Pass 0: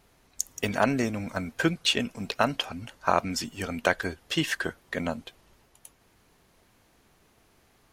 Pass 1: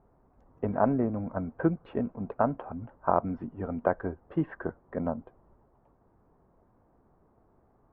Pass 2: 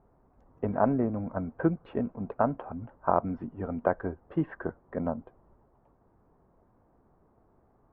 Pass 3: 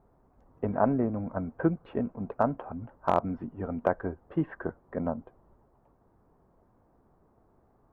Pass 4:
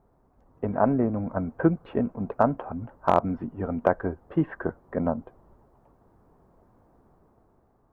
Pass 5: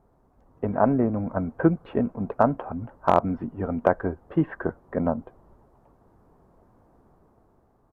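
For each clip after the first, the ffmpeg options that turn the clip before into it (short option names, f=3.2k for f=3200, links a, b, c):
-af "lowpass=f=1.1k:w=0.5412,lowpass=f=1.1k:w=1.3066"
-af anull
-af "aeval=exprs='clip(val(0),-1,0.2)':c=same"
-af "dynaudnorm=f=170:g=9:m=5dB"
-af "aresample=32000,aresample=44100,volume=1.5dB"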